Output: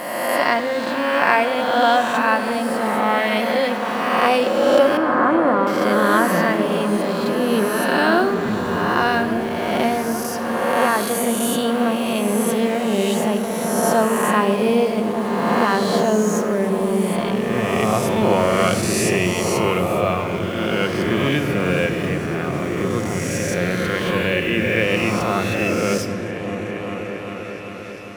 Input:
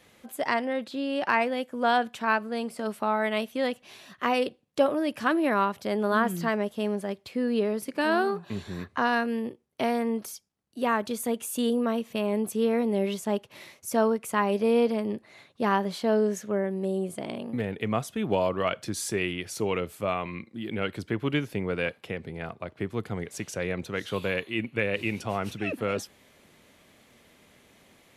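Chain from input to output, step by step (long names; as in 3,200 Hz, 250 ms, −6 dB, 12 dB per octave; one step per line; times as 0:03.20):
peak hold with a rise ahead of every peak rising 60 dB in 1.81 s
in parallel at −10 dB: bit-depth reduction 6 bits, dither none
0:04.97–0:05.67: on the sum: low-pass filter 1,400 Hz 24 dB per octave
echo whose low-pass opens from repeat to repeat 396 ms, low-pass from 200 Hz, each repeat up 1 octave, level −3 dB
rectangular room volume 2,800 cubic metres, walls mixed, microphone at 0.91 metres
level +2 dB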